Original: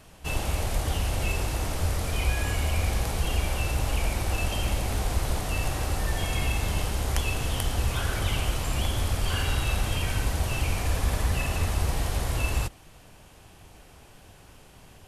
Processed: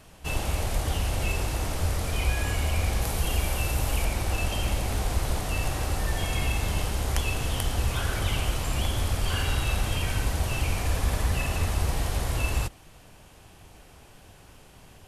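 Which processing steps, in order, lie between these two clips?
3.02–4.05 s: treble shelf 12 kHz +11.5 dB

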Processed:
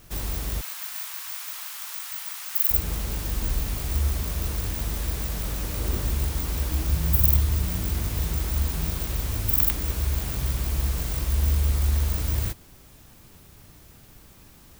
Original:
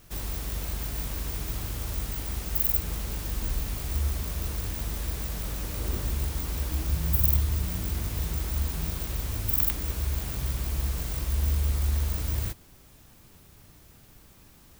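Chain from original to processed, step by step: 0.61–2.71 s: high-pass 980 Hz 24 dB/octave; trim +3.5 dB

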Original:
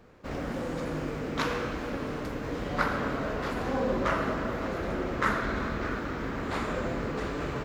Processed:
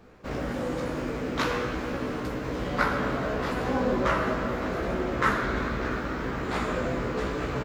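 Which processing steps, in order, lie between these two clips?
doubling 16 ms -5 dB; trim +1.5 dB

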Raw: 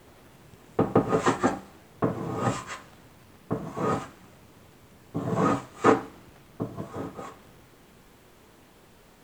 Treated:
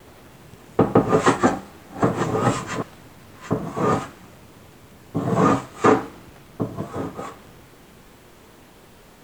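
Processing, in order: 1.08–3.54 s: chunks repeated in reverse 671 ms, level -9 dB; vibrato 2.5 Hz 46 cents; loudness maximiser +8.5 dB; trim -2 dB

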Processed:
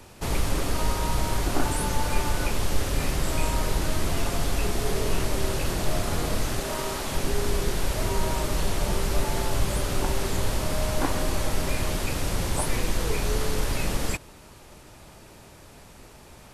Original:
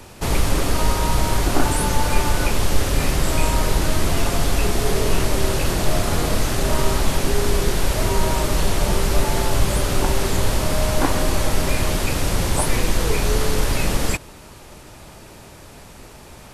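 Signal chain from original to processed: 6.60–7.12 s: bass shelf 160 Hz -12 dB; trim -6.5 dB

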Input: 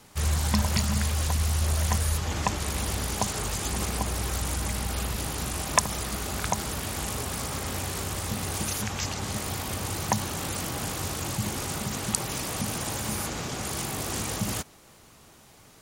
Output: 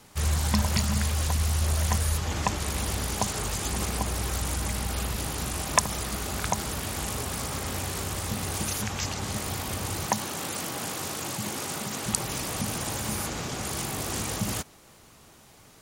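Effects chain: 10.06–12.06 s: Bessel high-pass 190 Hz, order 2

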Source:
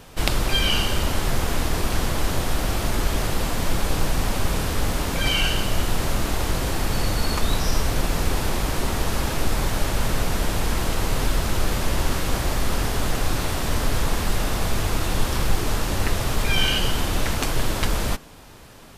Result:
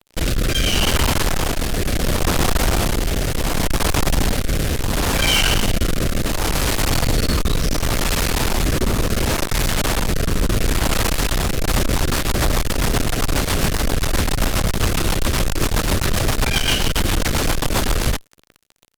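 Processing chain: 6.11–7.20 s: de-hum 52 Hz, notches 39; fuzz box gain 31 dB, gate -37 dBFS; rotary cabinet horn 0.7 Hz, later 7.5 Hz, at 11.35 s

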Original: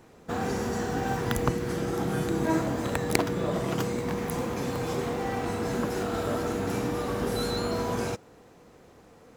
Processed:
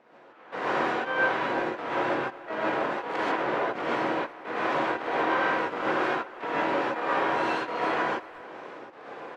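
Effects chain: dynamic bell 1.5 kHz, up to +5 dB, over -45 dBFS, Q 0.73; level rider gain up to 12 dB; peak limiter -10 dBFS, peak gain reduction 9 dB; compression 10:1, threshold -24 dBFS, peak gain reduction 9.5 dB; half-wave rectifier; trance gate "x..xx.xxx.x" 84 bpm -24 dB; harmony voices -7 st -1 dB, +7 st -6 dB, +12 st -6 dB; band-pass 440–2200 Hz; speakerphone echo 360 ms, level -17 dB; gated-style reverb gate 170 ms rising, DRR -7.5 dB; trim -1.5 dB

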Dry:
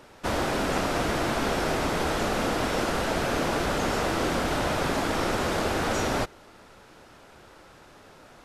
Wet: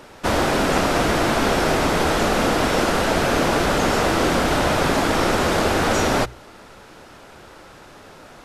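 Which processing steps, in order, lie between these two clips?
hum notches 60/120 Hz; trim +7.5 dB

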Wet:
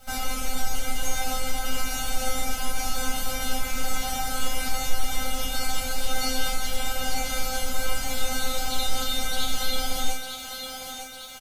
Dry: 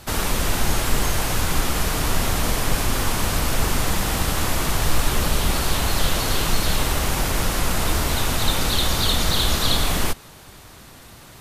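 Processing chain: peaking EQ 6.3 kHz +3.5 dB 0.24 oct; comb 1.4 ms, depth 77%; peak limiter -9.5 dBFS, peak gain reduction 7.5 dB; bit crusher 8-bit; feedback comb 260 Hz, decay 0.35 s, harmonics all, mix 100%; on a send: thinning echo 903 ms, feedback 56%, high-pass 200 Hz, level -6.5 dB; on the sum: trim +7 dB

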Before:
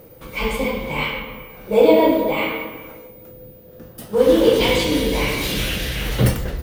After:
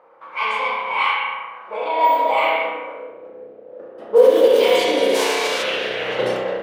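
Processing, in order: 5.14–5.62 s: formants flattened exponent 0.3; peak limiter -12 dBFS, peak gain reduction 10 dB; high-pass sweep 1 kHz -> 490 Hz, 1.91–3.11 s; spring tank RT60 1.1 s, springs 32 ms, chirp 65 ms, DRR -1 dB; level-controlled noise filter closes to 1.3 kHz, open at -11 dBFS

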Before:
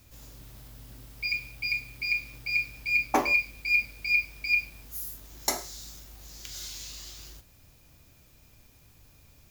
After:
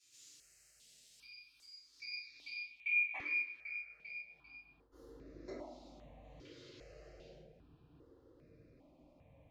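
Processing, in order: frequency weighting D; 2.65–4.92 s: expander -32 dBFS; tilt EQ -4 dB/octave; compression 6:1, threshold -36 dBFS, peak gain reduction 19.5 dB; band-pass sweep 7.7 kHz -> 520 Hz, 1.60–5.00 s; band-passed feedback delay 78 ms, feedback 73%, band-pass 810 Hz, level -16.5 dB; simulated room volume 76 m³, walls mixed, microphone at 3 m; stepped phaser 2.5 Hz 200–3100 Hz; trim -5.5 dB

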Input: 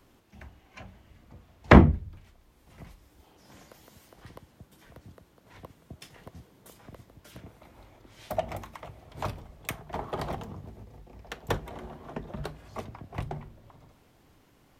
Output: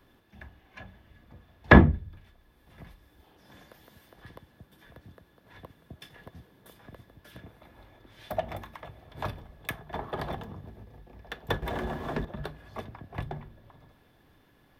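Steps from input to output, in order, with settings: peaking EQ 7.2 kHz -10.5 dB 0.74 oct; 11.62–12.25 s: waveshaping leveller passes 3; small resonant body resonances 1.7/3.5 kHz, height 14 dB, ringing for 55 ms; trim -1 dB

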